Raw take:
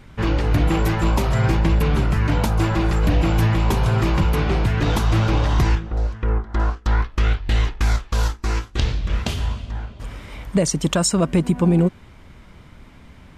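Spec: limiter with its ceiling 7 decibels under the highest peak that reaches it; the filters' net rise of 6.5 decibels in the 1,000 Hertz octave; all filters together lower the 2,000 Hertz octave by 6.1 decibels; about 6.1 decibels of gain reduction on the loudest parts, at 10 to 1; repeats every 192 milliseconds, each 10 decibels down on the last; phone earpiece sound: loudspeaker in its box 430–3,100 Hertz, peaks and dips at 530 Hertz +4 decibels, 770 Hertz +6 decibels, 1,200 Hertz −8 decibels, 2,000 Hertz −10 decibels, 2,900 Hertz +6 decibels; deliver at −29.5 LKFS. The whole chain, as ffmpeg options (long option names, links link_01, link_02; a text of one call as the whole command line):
ffmpeg -i in.wav -af "equalizer=frequency=1000:width_type=o:gain=8.5,equalizer=frequency=2000:width_type=o:gain=-7.5,acompressor=threshold=-19dB:ratio=10,alimiter=limit=-17dB:level=0:latency=1,highpass=430,equalizer=frequency=530:width_type=q:width=4:gain=4,equalizer=frequency=770:width_type=q:width=4:gain=6,equalizer=frequency=1200:width_type=q:width=4:gain=-8,equalizer=frequency=2000:width_type=q:width=4:gain=-10,equalizer=frequency=2900:width_type=q:width=4:gain=6,lowpass=frequency=3100:width=0.5412,lowpass=frequency=3100:width=1.3066,aecho=1:1:192|384|576|768:0.316|0.101|0.0324|0.0104,volume=2.5dB" out.wav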